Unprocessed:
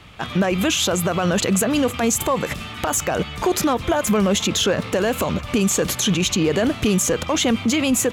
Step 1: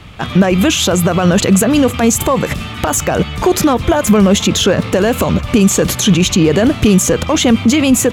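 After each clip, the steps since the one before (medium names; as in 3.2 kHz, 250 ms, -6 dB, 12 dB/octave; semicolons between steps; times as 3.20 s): bass shelf 310 Hz +6 dB; trim +5.5 dB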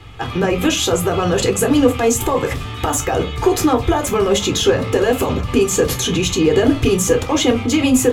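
reverberation RT60 0.25 s, pre-delay 8 ms, DRR 4 dB; trim -7 dB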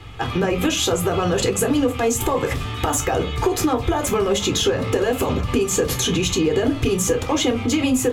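compression 3:1, threshold -17 dBFS, peak gain reduction 8 dB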